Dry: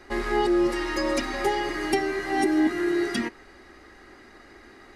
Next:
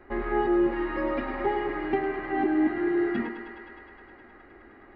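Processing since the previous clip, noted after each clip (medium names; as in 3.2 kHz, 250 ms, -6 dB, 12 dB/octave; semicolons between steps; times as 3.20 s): Gaussian low-pass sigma 3.8 samples; on a send: thinning echo 104 ms, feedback 84%, high-pass 260 Hz, level -9 dB; on the sum: trim -1.5 dB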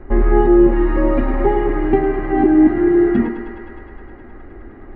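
tilt EQ -3.5 dB/octave; trim +7 dB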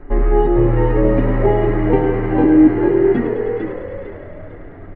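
comb 6.9 ms, depth 56%; on a send: frequency-shifting echo 450 ms, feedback 34%, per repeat +80 Hz, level -5.5 dB; on the sum: trim -1.5 dB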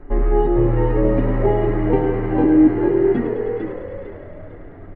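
peaking EQ 2 kHz -2.5 dB 1.4 oct; trim -2.5 dB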